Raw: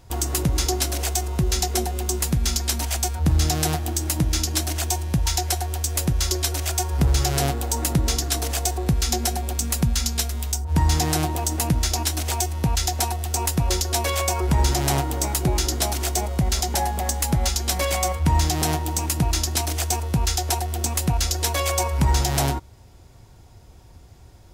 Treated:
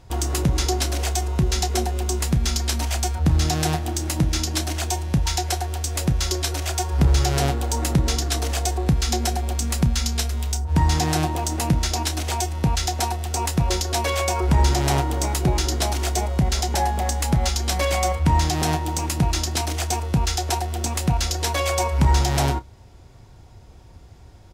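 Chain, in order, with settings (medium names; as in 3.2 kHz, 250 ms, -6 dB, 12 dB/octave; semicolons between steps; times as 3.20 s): treble shelf 9.1 kHz -11.5 dB; doubling 31 ms -13.5 dB; trim +1.5 dB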